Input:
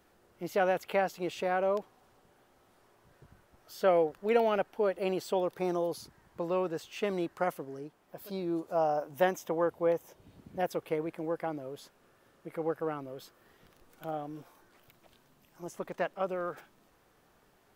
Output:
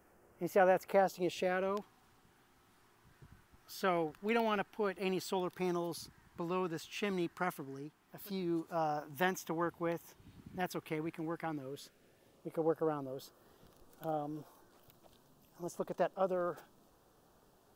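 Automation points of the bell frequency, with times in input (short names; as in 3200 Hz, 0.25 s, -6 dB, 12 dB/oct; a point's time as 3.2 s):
bell -13.5 dB 0.71 oct
0.79 s 3800 Hz
1.77 s 550 Hz
11.48 s 550 Hz
12.62 s 2100 Hz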